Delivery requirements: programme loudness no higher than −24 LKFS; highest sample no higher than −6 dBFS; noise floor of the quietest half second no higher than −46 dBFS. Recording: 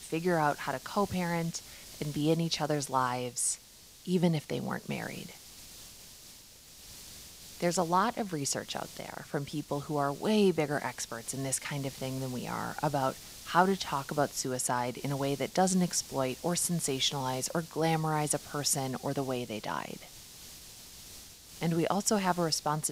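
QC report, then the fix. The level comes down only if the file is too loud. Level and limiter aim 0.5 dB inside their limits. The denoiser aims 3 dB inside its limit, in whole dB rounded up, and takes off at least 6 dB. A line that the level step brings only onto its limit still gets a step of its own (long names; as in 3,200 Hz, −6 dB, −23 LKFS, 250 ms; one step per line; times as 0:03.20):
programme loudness −31.5 LKFS: in spec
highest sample −9.5 dBFS: in spec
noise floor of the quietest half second −54 dBFS: in spec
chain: no processing needed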